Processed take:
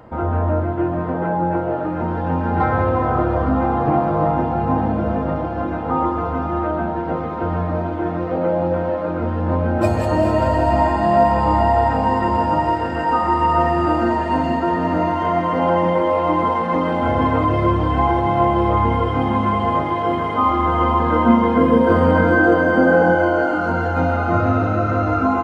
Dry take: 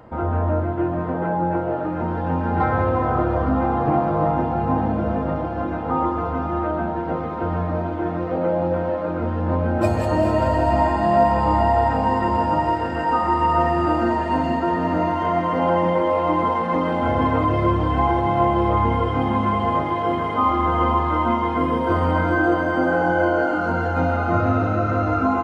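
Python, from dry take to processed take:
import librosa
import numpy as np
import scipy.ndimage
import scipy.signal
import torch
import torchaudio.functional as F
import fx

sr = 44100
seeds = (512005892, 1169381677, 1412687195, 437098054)

y = fx.small_body(x, sr, hz=(220.0, 480.0, 1600.0), ring_ms=70, db=13, at=(21.0, 23.15))
y = y * 10.0 ** (2.0 / 20.0)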